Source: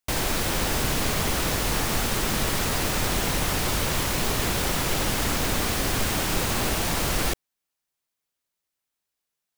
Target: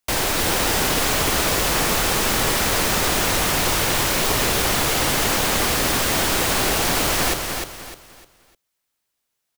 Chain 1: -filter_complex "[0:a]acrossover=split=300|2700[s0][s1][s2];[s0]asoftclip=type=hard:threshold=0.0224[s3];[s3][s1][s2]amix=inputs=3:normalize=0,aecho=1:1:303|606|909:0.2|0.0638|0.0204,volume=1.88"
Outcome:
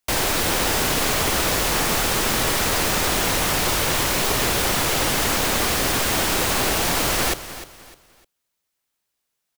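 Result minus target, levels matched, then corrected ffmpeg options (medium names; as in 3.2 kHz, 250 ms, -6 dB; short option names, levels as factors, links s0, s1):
echo-to-direct -8.5 dB
-filter_complex "[0:a]acrossover=split=300|2700[s0][s1][s2];[s0]asoftclip=type=hard:threshold=0.0224[s3];[s3][s1][s2]amix=inputs=3:normalize=0,aecho=1:1:303|606|909|1212:0.531|0.17|0.0544|0.0174,volume=1.88"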